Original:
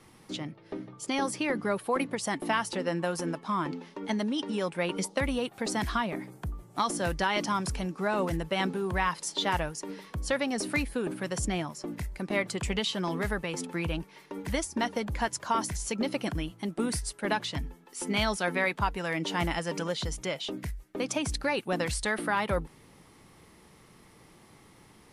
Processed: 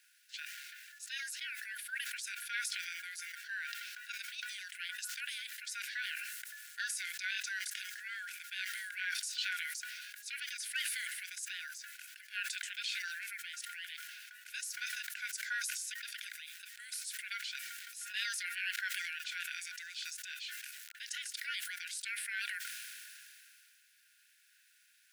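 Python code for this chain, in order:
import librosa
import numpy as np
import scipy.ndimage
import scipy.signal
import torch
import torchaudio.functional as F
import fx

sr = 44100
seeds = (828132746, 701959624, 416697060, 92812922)

y = fx.quant_dither(x, sr, seeds[0], bits=10, dither='none')
y = y * np.sin(2.0 * np.pi * 540.0 * np.arange(len(y)) / sr)
y = fx.brickwall_highpass(y, sr, low_hz=1400.0)
y = fx.sustainer(y, sr, db_per_s=21.0)
y = y * librosa.db_to_amplitude(-4.5)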